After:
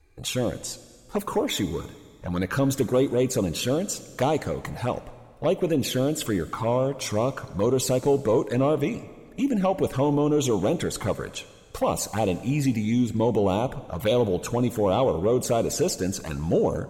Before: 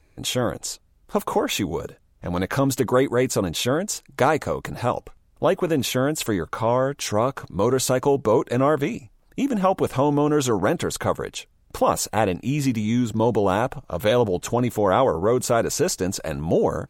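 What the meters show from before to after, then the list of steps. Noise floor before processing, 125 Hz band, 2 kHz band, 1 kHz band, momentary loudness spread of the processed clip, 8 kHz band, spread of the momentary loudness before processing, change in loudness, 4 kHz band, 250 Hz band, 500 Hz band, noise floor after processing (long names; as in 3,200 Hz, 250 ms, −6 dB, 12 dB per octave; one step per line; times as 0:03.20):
−59 dBFS, −1.0 dB, −6.0 dB, −6.0 dB, 9 LU, −3.0 dB, 9 LU, −2.5 dB, −3.0 dB, −1.5 dB, −2.5 dB, −49 dBFS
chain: soft clipping −11.5 dBFS, distortion −19 dB
flanger swept by the level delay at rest 2.6 ms, full sweep at −18 dBFS
dense smooth reverb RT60 2 s, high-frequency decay 0.9×, DRR 14 dB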